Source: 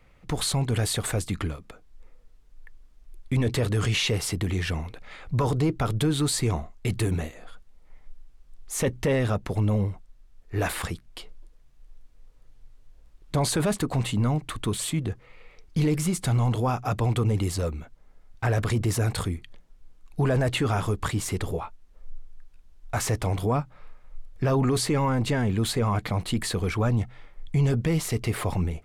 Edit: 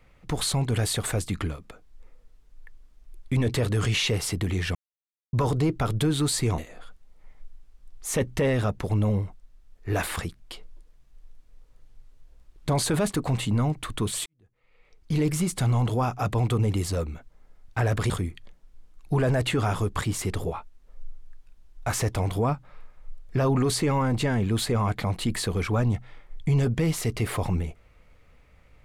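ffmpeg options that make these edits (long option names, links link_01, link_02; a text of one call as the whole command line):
ffmpeg -i in.wav -filter_complex "[0:a]asplit=6[link_01][link_02][link_03][link_04][link_05][link_06];[link_01]atrim=end=4.75,asetpts=PTS-STARTPTS,afade=type=out:start_time=4.746:duration=0.004:curve=hsin[link_07];[link_02]atrim=start=4.75:end=5.33,asetpts=PTS-STARTPTS,volume=0[link_08];[link_03]atrim=start=5.33:end=6.582,asetpts=PTS-STARTPTS,afade=type=in:duration=0.004:curve=hsin[link_09];[link_04]atrim=start=7.238:end=14.92,asetpts=PTS-STARTPTS,afade=type=out:start_time=7.678:duration=0.004:curve=hsin[link_10];[link_05]atrim=start=14.92:end=18.762,asetpts=PTS-STARTPTS,afade=type=in:duration=0.99:curve=qua[link_11];[link_06]atrim=start=19.168[link_12];[link_07][link_08][link_09]concat=n=3:v=0:a=1[link_13];[link_10][link_11]concat=n=2:v=0:a=1[link_14];[link_13][link_14]acrossfade=duration=0.004:curve1=hsin:curve2=hsin[link_15];[link_15][link_12]acrossfade=duration=0.004:curve1=hsin:curve2=hsin" out.wav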